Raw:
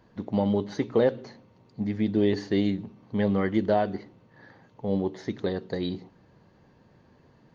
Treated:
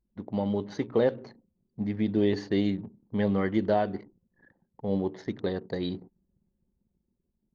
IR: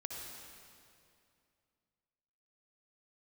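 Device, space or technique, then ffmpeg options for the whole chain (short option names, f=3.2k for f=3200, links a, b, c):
voice memo with heavy noise removal: -af "anlmdn=0.0398,dynaudnorm=f=140:g=11:m=3dB,volume=-4.5dB"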